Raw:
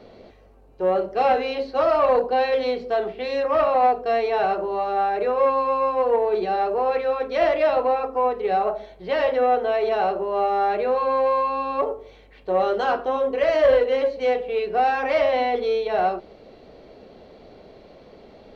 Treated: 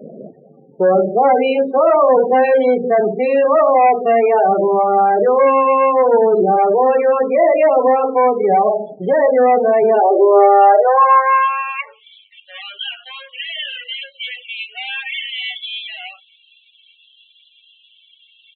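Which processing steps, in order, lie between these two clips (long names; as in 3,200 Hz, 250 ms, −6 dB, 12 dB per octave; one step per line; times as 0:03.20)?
mains-hum notches 60/120/180/240/300/360/420/480 Hz
in parallel at −2 dB: downward compressor 6 to 1, threshold −30 dBFS, peak gain reduction 16 dB
on the sum: leveller curve on the samples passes 2
high-pass filter sweep 170 Hz → 3,100 Hz, 0:09.71–0:12.06
spectral peaks only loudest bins 16
downsampling to 8,000 Hz
level +1 dB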